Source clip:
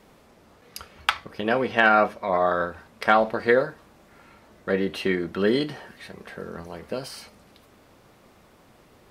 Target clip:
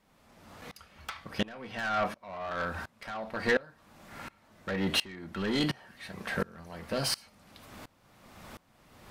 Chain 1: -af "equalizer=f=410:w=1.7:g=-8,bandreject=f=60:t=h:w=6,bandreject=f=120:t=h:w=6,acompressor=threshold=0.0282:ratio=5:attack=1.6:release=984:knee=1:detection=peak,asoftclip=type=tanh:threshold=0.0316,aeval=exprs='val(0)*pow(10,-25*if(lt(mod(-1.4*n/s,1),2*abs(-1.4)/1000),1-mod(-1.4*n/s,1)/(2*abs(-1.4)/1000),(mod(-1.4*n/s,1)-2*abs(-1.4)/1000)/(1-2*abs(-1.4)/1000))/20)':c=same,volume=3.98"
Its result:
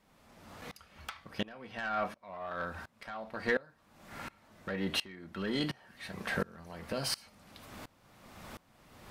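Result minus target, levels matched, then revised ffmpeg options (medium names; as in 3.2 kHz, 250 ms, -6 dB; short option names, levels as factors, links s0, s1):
compression: peak gain reduction +6.5 dB
-af "equalizer=f=410:w=1.7:g=-8,bandreject=f=60:t=h:w=6,bandreject=f=120:t=h:w=6,acompressor=threshold=0.0708:ratio=5:attack=1.6:release=984:knee=1:detection=peak,asoftclip=type=tanh:threshold=0.0316,aeval=exprs='val(0)*pow(10,-25*if(lt(mod(-1.4*n/s,1),2*abs(-1.4)/1000),1-mod(-1.4*n/s,1)/(2*abs(-1.4)/1000),(mod(-1.4*n/s,1)-2*abs(-1.4)/1000)/(1-2*abs(-1.4)/1000))/20)':c=same,volume=3.98"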